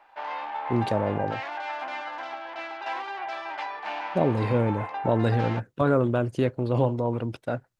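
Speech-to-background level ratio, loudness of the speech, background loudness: 8.0 dB, -26.0 LUFS, -34.0 LUFS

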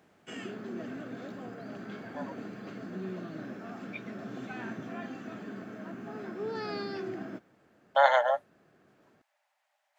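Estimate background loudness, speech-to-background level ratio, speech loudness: -40.5 LUFS, 14.5 dB, -26.0 LUFS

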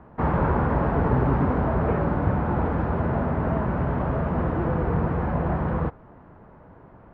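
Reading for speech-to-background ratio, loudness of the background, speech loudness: -5.0 dB, -24.5 LUFS, -29.5 LUFS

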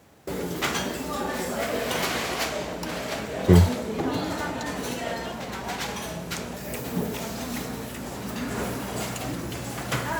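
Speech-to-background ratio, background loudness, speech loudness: 9.5 dB, -30.0 LUFS, -20.5 LUFS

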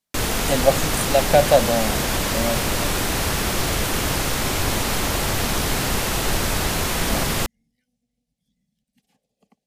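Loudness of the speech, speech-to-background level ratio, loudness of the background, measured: -21.5 LUFS, 0.5 dB, -22.0 LUFS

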